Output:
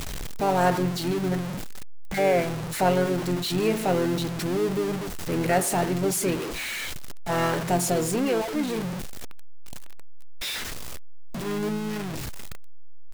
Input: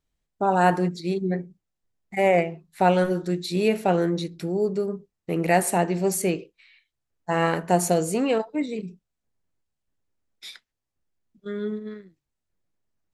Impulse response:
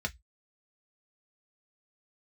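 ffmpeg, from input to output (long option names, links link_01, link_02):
-filter_complex "[0:a]aeval=exprs='val(0)+0.5*0.0891*sgn(val(0))':channel_layout=same,asplit=2[link_01][link_02];[link_02]asetrate=33038,aresample=44100,atempo=1.33484,volume=-8dB[link_03];[link_01][link_03]amix=inputs=2:normalize=0,volume=-5.5dB"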